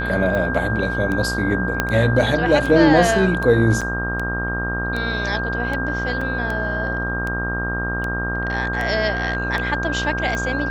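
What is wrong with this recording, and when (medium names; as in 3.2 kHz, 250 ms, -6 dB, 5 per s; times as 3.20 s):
buzz 60 Hz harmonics 27 -26 dBFS
tick 78 rpm -14 dBFS
whine 1.6 kHz -24 dBFS
1.80 s: pop -4 dBFS
3.81–3.82 s: dropout 6.2 ms
6.21 s: dropout 4.1 ms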